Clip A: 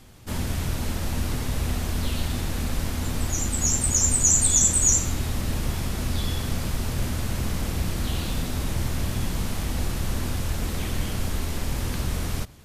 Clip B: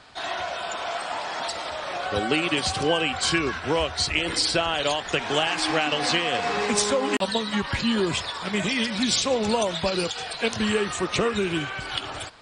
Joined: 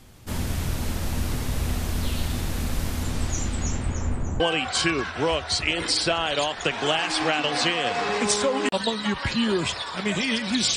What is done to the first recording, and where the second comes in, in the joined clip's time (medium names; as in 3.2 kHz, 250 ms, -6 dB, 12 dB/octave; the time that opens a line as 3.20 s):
clip A
3.03–4.40 s: low-pass 12 kHz -> 1 kHz
4.40 s: go over to clip B from 2.88 s